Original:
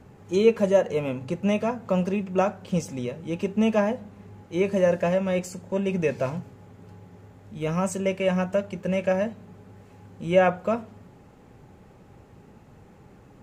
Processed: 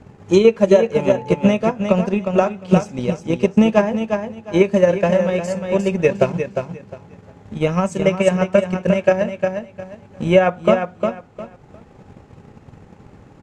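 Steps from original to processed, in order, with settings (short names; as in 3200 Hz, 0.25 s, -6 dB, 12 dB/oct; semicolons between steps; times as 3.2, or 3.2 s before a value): LPF 7800 Hz 12 dB/oct; on a send: feedback echo 0.355 s, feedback 26%, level -5.5 dB; on the sum: transient shaper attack +9 dB, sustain -5 dB; 0.94–1.47 whine 870 Hz -38 dBFS; maximiser +5.5 dB; gain -1 dB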